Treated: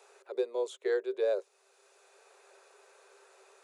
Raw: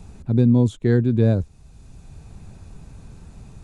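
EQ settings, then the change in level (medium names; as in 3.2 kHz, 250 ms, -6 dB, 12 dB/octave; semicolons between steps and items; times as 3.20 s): dynamic bell 1.6 kHz, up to -6 dB, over -46 dBFS, Q 1.6; rippled Chebyshev high-pass 380 Hz, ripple 6 dB; 0.0 dB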